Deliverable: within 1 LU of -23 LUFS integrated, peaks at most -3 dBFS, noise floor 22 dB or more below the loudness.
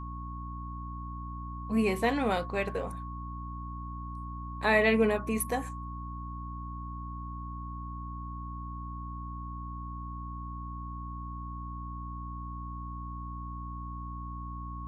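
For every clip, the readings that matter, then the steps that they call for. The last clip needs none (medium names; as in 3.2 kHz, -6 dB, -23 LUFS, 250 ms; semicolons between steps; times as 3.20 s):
hum 60 Hz; highest harmonic 300 Hz; hum level -38 dBFS; steady tone 1.1 kHz; tone level -42 dBFS; loudness -34.5 LUFS; peak level -12.0 dBFS; loudness target -23.0 LUFS
-> hum notches 60/120/180/240/300 Hz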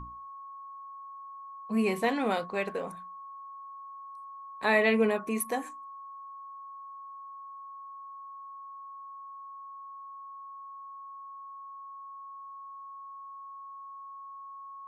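hum not found; steady tone 1.1 kHz; tone level -42 dBFS
-> band-stop 1.1 kHz, Q 30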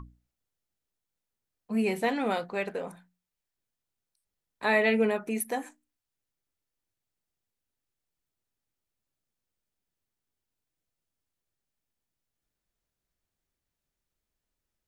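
steady tone not found; loudness -28.5 LUFS; peak level -12.5 dBFS; loudness target -23.0 LUFS
-> trim +5.5 dB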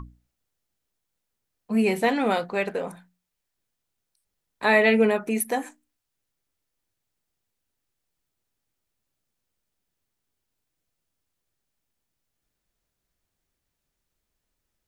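loudness -23.0 LUFS; peak level -7.0 dBFS; noise floor -82 dBFS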